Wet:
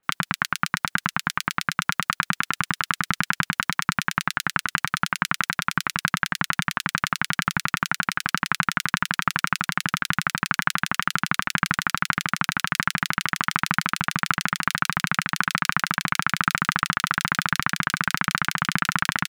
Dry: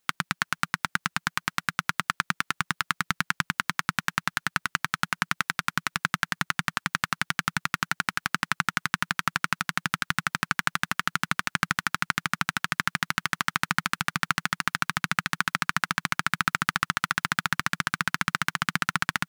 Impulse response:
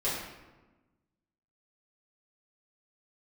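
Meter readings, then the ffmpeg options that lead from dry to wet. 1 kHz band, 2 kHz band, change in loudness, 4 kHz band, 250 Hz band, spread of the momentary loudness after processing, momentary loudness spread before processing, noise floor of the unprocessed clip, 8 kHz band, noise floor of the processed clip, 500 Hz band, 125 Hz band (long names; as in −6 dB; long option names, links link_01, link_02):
+4.0 dB, +3.0 dB, +3.5 dB, +3.0 dB, +4.5 dB, 2 LU, 3 LU, −75 dBFS, +4.5 dB, −71 dBFS, +4.5 dB, +4.5 dB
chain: -filter_complex "[0:a]acrossover=split=2500[link_01][link_02];[link_02]adelay=30[link_03];[link_01][link_03]amix=inputs=2:normalize=0,volume=4.5dB"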